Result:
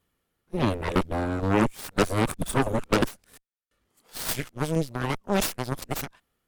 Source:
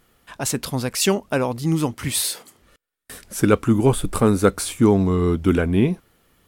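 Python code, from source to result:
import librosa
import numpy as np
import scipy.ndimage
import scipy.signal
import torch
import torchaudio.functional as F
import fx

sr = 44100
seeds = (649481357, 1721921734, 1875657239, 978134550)

y = np.flip(x).copy()
y = fx.tremolo_shape(y, sr, shape='saw_down', hz=2.1, depth_pct=35)
y = fx.cheby_harmonics(y, sr, harmonics=(3, 7, 8), levels_db=(-19, -27, -11), full_scale_db=-4.0)
y = y * librosa.db_to_amplitude(-6.0)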